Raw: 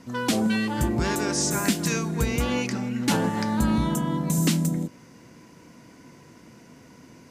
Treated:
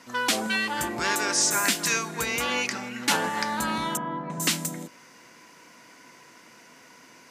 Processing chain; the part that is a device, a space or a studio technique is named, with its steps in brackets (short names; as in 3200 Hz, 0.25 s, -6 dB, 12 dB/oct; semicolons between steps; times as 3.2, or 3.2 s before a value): filter by subtraction (in parallel: LPF 1500 Hz 12 dB/oct + phase invert); 3.97–4.4 on the sum: LPF 1500 Hz 12 dB/oct; gain +3.5 dB